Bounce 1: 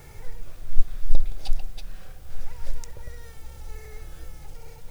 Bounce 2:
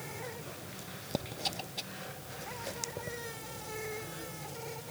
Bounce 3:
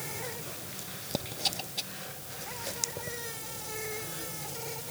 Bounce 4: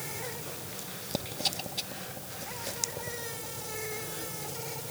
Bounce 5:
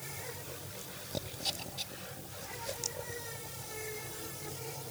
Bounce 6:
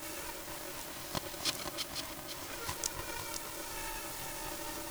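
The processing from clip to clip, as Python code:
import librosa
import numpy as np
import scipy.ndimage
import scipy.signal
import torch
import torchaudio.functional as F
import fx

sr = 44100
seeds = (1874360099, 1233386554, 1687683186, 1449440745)

y1 = scipy.signal.sosfilt(scipy.signal.butter(4, 130.0, 'highpass', fs=sr, output='sos'), x)
y1 = y1 * librosa.db_to_amplitude(8.0)
y2 = fx.high_shelf(y1, sr, hz=3600.0, db=8.5)
y2 = fx.rider(y2, sr, range_db=10, speed_s=2.0)
y3 = fx.echo_bbd(y2, sr, ms=255, stages=2048, feedback_pct=78, wet_db=-9)
y4 = fx.chorus_voices(y3, sr, voices=6, hz=0.82, base_ms=22, depth_ms=1.8, mix_pct=60)
y4 = y4 * librosa.db_to_amplitude(-2.0)
y5 = y4 + 10.0 ** (-7.0 / 20.0) * np.pad(y4, (int(504 * sr / 1000.0), 0))[:len(y4)]
y5 = y5 * np.sign(np.sin(2.0 * np.pi * 460.0 * np.arange(len(y5)) / sr))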